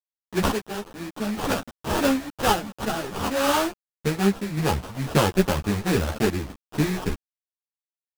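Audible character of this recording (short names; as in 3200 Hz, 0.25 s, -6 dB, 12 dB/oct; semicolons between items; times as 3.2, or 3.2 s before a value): a quantiser's noise floor 6-bit, dither none; random-step tremolo; aliases and images of a low sample rate 2100 Hz, jitter 20%; a shimmering, thickened sound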